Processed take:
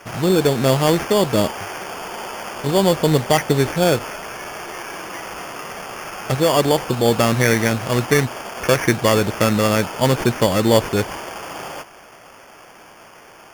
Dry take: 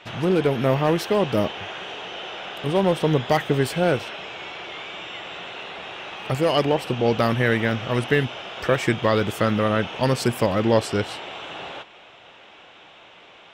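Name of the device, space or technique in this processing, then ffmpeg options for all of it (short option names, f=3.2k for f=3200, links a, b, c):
crushed at another speed: -af "asetrate=35280,aresample=44100,acrusher=samples=14:mix=1:aa=0.000001,asetrate=55125,aresample=44100,volume=4dB"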